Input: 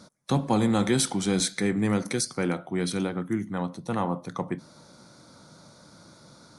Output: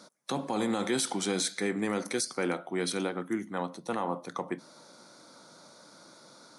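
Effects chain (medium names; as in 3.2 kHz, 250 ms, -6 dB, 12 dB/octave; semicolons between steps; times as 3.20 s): high-pass 300 Hz 12 dB/octave; peak limiter -19.5 dBFS, peak gain reduction 8 dB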